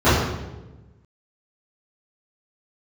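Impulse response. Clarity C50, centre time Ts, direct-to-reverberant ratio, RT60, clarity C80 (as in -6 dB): 0.0 dB, 80 ms, -18.0 dB, 1.1 s, 3.0 dB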